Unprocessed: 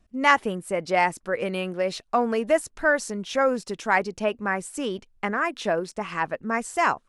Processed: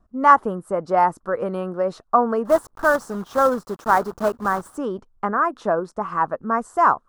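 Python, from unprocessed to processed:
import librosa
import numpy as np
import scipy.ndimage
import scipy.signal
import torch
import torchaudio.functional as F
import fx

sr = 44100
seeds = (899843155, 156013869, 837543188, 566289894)

y = fx.block_float(x, sr, bits=3, at=(2.45, 4.79))
y = fx.high_shelf_res(y, sr, hz=1700.0, db=-11.0, q=3.0)
y = y * librosa.db_to_amplitude(2.0)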